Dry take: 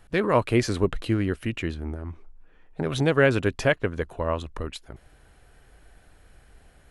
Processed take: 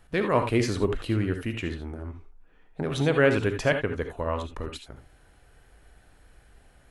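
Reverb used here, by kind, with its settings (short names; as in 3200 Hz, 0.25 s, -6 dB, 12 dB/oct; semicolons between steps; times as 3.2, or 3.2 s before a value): non-linear reverb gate 0.1 s rising, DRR 6 dB; gain -2.5 dB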